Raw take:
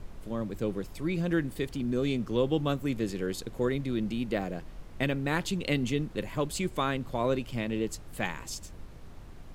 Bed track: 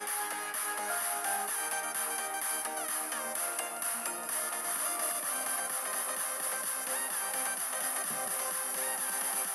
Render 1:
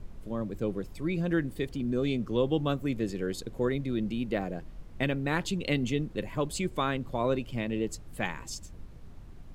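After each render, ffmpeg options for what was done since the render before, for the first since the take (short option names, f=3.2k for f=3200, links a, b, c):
-af "afftdn=nr=6:nf=-46"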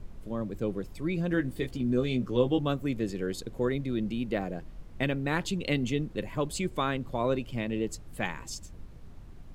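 -filter_complex "[0:a]asettb=1/sr,asplit=3[a][b][c];[a]atrim=end=1.324[d];[b]atrim=start=1.32:end=2.59,asetpts=PTS-STARTPTS,afade=t=in:d=0.004:c=qsin,afade=t=out:st=1.266:d=0.004:c=qsin,asplit=2[e][f];[f]adelay=16,volume=-6dB[g];[e][g]amix=inputs=2:normalize=0,atrim=end_sample=56007[h];[c]atrim=start=2.586[i];[d][h]acrossfade=d=0.004:c1=hsin:c2=qsin[j];[j][i]acrossfade=d=0.004:c1=qsin:c2=hsin"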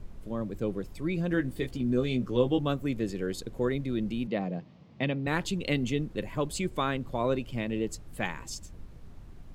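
-filter_complex "[0:a]asettb=1/sr,asplit=3[a][b][c];[a]atrim=end=4.274[d];[b]atrim=start=4.27:end=5.27,asetpts=PTS-STARTPTS,afade=t=in:d=0.004:c=qsin,afade=t=out:st=0.996:d=0.004:c=qsin,highpass=f=110:w=0.5412,highpass=f=110:w=1.3066,equalizer=f=180:t=q:w=4:g=5,equalizer=f=360:t=q:w=4:g=-4,equalizer=f=1.5k:t=q:w=4:g=-9,lowpass=f=5.2k:w=0.5412,lowpass=f=5.2k:w=1.3066[e];[c]atrim=start=5.266[f];[d][e]acrossfade=d=0.004:c1=hsin:c2=qsin[g];[g][f]acrossfade=d=0.004:c1=qsin:c2=hsin"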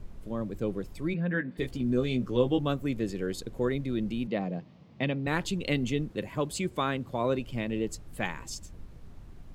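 -filter_complex "[0:a]asplit=3[a][b][c];[a]afade=t=out:st=1.13:d=0.02[d];[b]highpass=f=170:w=0.5412,highpass=f=170:w=1.3066,equalizer=f=180:t=q:w=4:g=5,equalizer=f=340:t=q:w=4:g=-9,equalizer=f=750:t=q:w=4:g=-5,equalizer=f=1.2k:t=q:w=4:g=-4,equalizer=f=1.7k:t=q:w=4:g=6,equalizer=f=3k:t=q:w=4:g=-6,lowpass=f=3.3k:w=0.5412,lowpass=f=3.3k:w=1.3066,afade=t=in:st=1.13:d=0.02,afade=t=out:st=1.57:d=0.02[e];[c]afade=t=in:st=1.57:d=0.02[f];[d][e][f]amix=inputs=3:normalize=0,asettb=1/sr,asplit=3[g][h][i];[g]atrim=end=6.104[j];[h]atrim=start=6.1:end=7.39,asetpts=PTS-STARTPTS,afade=t=in:d=0.004:c=qsin,afade=t=out:st=1.286:d=0.004:c=qsin,highpass=69[k];[i]atrim=start=7.386[l];[j][k]acrossfade=d=0.004:c1=hsin:c2=qsin[m];[m][l]acrossfade=d=0.004:c1=qsin:c2=hsin"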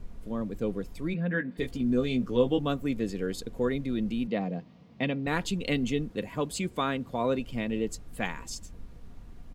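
-af "aecho=1:1:4.2:0.31"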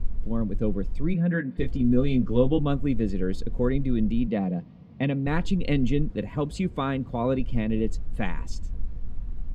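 -af "aemphasis=mode=reproduction:type=bsi"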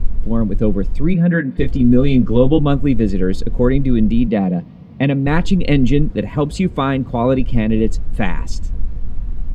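-af "volume=10dB,alimiter=limit=-1dB:level=0:latency=1"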